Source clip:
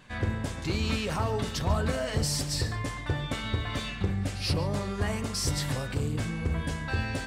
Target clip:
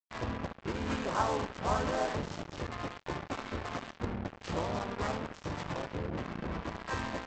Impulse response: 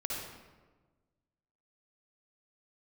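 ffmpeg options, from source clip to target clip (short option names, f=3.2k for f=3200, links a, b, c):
-filter_complex "[0:a]highpass=95,asplit=3[a][b][c];[b]asetrate=29433,aresample=44100,atempo=1.49831,volume=-5dB[d];[c]asetrate=52444,aresample=44100,atempo=0.840896,volume=-3dB[e];[a][d][e]amix=inputs=3:normalize=0,tiltshelf=f=1.2k:g=-6,adynamicsmooth=sensitivity=1:basefreq=540,equalizer=f=125:t=o:w=1:g=-8,equalizer=f=1k:t=o:w=1:g=5,equalizer=f=4k:t=o:w=1:g=-3,aecho=1:1:73:0.282,aresample=16000,acrusher=bits=5:mix=0:aa=0.5,aresample=44100"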